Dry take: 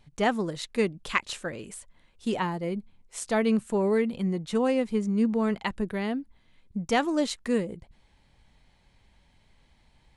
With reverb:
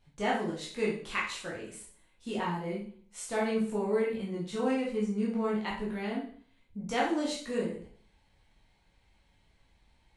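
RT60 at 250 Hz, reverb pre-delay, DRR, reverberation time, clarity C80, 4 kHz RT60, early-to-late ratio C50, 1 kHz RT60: 0.55 s, 6 ms, −6.0 dB, 0.50 s, 9.0 dB, 0.50 s, 4.5 dB, 0.50 s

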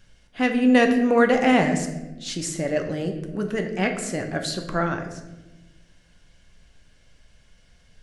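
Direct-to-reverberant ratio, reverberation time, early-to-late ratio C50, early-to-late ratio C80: 4.0 dB, 1.1 s, 8.0 dB, 10.0 dB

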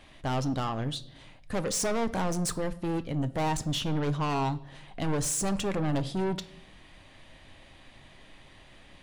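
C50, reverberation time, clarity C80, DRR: 17.5 dB, 0.75 s, 21.0 dB, 10.5 dB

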